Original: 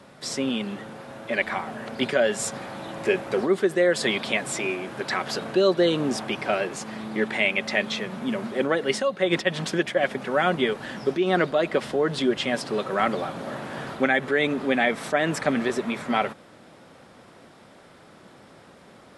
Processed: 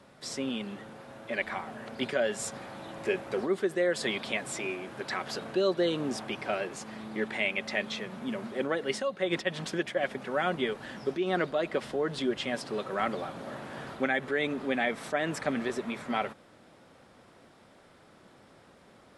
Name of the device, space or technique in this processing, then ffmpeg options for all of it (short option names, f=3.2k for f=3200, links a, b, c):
low shelf boost with a cut just above: -af "lowshelf=f=75:g=5.5,equalizer=f=160:t=o:w=0.77:g=-2,volume=-7dB"